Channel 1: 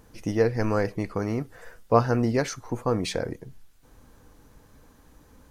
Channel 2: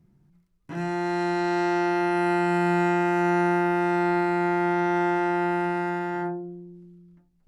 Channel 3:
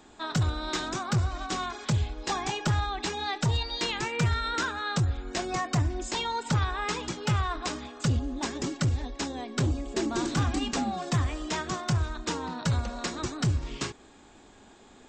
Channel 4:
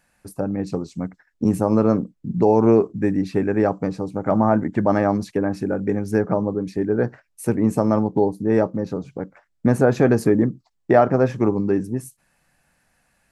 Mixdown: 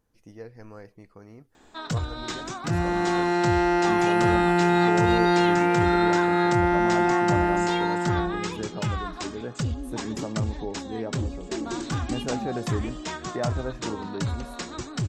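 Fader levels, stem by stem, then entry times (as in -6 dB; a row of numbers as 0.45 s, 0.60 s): -19.5 dB, +2.0 dB, -2.0 dB, -15.0 dB; 0.00 s, 1.95 s, 1.55 s, 2.45 s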